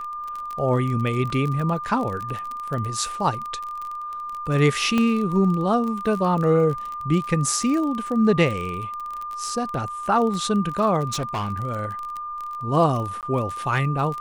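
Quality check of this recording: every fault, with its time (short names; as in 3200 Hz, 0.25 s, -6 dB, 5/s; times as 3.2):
crackle 25/s -27 dBFS
tone 1200 Hz -29 dBFS
1.3 gap 2.4 ms
4.98 pop -10 dBFS
11.08–11.51 clipped -22.5 dBFS
13.21–13.23 gap 18 ms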